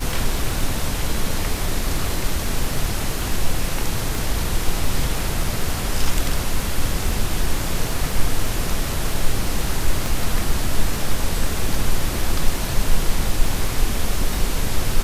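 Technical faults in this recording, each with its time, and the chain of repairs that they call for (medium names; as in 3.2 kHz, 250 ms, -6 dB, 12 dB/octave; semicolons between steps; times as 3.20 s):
crackle 20 per s -25 dBFS
4.15 s: pop
10.06 s: pop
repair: de-click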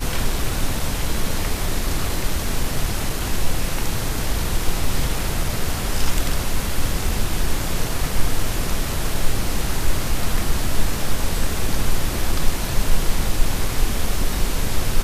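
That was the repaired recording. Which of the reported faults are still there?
4.15 s: pop
10.06 s: pop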